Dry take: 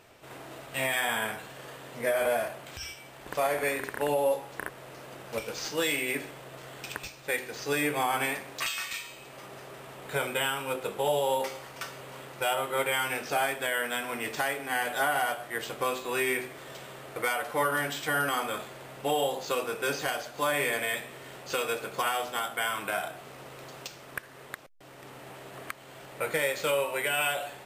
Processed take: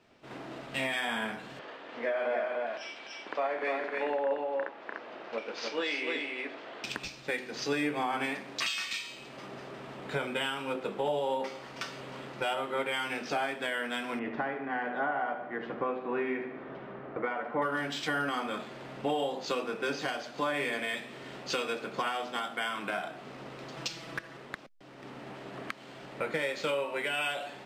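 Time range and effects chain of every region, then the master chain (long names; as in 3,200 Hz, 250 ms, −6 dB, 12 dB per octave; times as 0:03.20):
0:01.59–0:06.84: band-pass filter 390–3,700 Hz + single-tap delay 296 ms −3.5 dB
0:14.19–0:17.62: low-pass filter 1,700 Hz + repeating echo 73 ms, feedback 54%, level −10 dB
0:23.76–0:24.37: comb filter 6.1 ms, depth 94% + hard clipping −25.5 dBFS
whole clip: drawn EQ curve 110 Hz 0 dB, 220 Hz +14 dB, 470 Hz +6 dB, 5,000 Hz +6 dB, 12,000 Hz −12 dB; downward compressor 2.5 to 1, threshold −34 dBFS; multiband upward and downward expander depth 70%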